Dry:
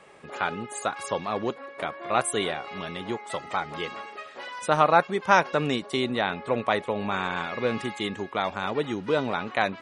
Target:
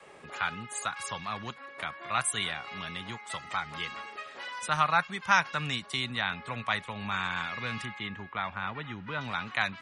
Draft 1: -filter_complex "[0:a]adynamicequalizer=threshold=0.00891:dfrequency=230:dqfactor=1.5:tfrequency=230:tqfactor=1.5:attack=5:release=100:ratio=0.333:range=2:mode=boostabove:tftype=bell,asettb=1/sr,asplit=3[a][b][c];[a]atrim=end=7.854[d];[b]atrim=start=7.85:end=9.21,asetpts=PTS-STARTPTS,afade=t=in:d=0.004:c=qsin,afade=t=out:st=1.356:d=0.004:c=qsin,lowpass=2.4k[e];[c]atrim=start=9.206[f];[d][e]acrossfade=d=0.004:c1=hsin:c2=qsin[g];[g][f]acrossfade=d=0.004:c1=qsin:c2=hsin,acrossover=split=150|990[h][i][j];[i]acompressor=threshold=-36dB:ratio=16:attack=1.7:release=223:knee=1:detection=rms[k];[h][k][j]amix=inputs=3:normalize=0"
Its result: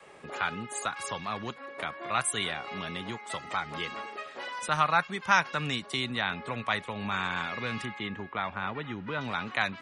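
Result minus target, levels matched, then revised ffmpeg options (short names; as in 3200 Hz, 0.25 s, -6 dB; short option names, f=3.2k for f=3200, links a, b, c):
compressor: peak gain reduction -9.5 dB
-filter_complex "[0:a]adynamicequalizer=threshold=0.00891:dfrequency=230:dqfactor=1.5:tfrequency=230:tqfactor=1.5:attack=5:release=100:ratio=0.333:range=2:mode=boostabove:tftype=bell,asettb=1/sr,asplit=3[a][b][c];[a]atrim=end=7.854[d];[b]atrim=start=7.85:end=9.21,asetpts=PTS-STARTPTS,afade=t=in:d=0.004:c=qsin,afade=t=out:st=1.356:d=0.004:c=qsin,lowpass=2.4k[e];[c]atrim=start=9.206[f];[d][e]acrossfade=d=0.004:c1=hsin:c2=qsin[g];[g][f]acrossfade=d=0.004:c1=qsin:c2=hsin,acrossover=split=150|990[h][i][j];[i]acompressor=threshold=-46dB:ratio=16:attack=1.7:release=223:knee=1:detection=rms[k];[h][k][j]amix=inputs=3:normalize=0"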